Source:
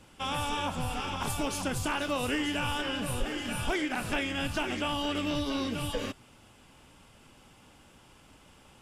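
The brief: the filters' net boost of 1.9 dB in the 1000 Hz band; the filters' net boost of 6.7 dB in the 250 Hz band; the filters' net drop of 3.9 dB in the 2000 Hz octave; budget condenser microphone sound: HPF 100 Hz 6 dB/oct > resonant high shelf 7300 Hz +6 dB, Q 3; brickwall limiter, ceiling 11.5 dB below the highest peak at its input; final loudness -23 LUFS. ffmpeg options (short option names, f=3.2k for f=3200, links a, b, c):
-af "equalizer=f=250:t=o:g=8.5,equalizer=f=1k:t=o:g=3.5,equalizer=f=2k:t=o:g=-6.5,alimiter=level_in=3.5dB:limit=-24dB:level=0:latency=1,volume=-3.5dB,highpass=f=100:p=1,highshelf=f=7.3k:t=q:w=3:g=6,volume=12dB"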